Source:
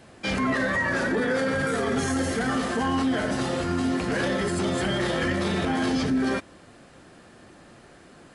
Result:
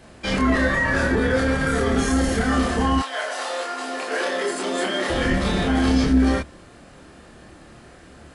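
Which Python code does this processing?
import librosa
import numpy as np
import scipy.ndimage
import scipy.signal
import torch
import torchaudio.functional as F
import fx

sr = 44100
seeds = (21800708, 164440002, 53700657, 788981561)

y = fx.octave_divider(x, sr, octaves=2, level_db=-1.0)
y = fx.highpass(y, sr, hz=fx.line((2.98, 680.0), (5.09, 240.0)), slope=24, at=(2.98, 5.09), fade=0.02)
y = fx.doubler(y, sr, ms=27.0, db=-2.0)
y = y * 10.0 ** (1.5 / 20.0)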